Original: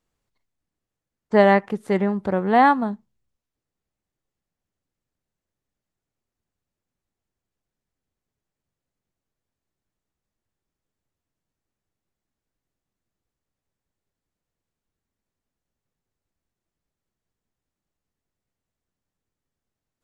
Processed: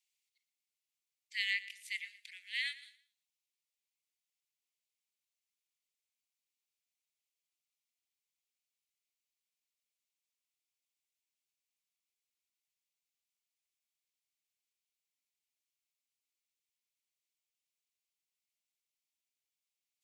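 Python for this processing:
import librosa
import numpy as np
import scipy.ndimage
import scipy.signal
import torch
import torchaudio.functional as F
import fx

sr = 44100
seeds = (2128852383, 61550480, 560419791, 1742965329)

p1 = scipy.signal.sosfilt(scipy.signal.butter(12, 2100.0, 'highpass', fs=sr, output='sos'), x)
y = p1 + fx.echo_feedback(p1, sr, ms=116, feedback_pct=30, wet_db=-17, dry=0)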